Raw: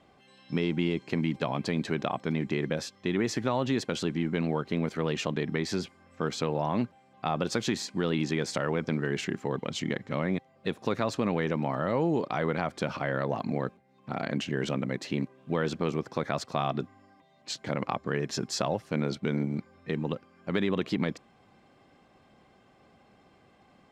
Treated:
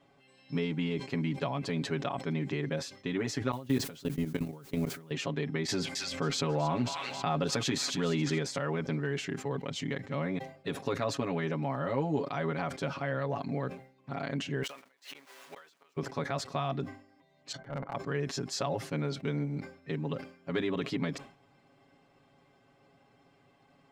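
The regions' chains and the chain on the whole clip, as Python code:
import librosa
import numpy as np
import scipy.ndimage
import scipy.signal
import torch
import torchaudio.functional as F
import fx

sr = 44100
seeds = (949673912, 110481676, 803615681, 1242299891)

y = fx.chain(x, sr, fx.low_shelf(hz=360.0, db=5.5),
    fx.quant_dither(seeds[0], bits=8, dither='triangular'),
    fx.level_steps(step_db=24), at=(3.51, 5.11))
y = fx.chain(y, sr, fx.transient(attack_db=0, sustain_db=-5),
    fx.echo_wet_highpass(ms=270, feedback_pct=47, hz=2100.0, wet_db=-8.5),
    fx.env_flatten(amount_pct=70), at=(5.68, 8.38))
y = fx.chain(y, sr, fx.zero_step(step_db=-38.0),
    fx.highpass(hz=870.0, slope=12),
    fx.gate_flip(shuts_db=-27.0, range_db=-29), at=(14.63, 15.97))
y = fx.chain(y, sr, fx.savgol(points=41),
    fx.transient(attack_db=-11, sustain_db=-6),
    fx.comb(ms=1.4, depth=0.38), at=(17.52, 17.95))
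y = y + 0.94 * np.pad(y, (int(7.2 * sr / 1000.0), 0))[:len(y)]
y = fx.sustainer(y, sr, db_per_s=120.0)
y = y * librosa.db_to_amplitude(-6.5)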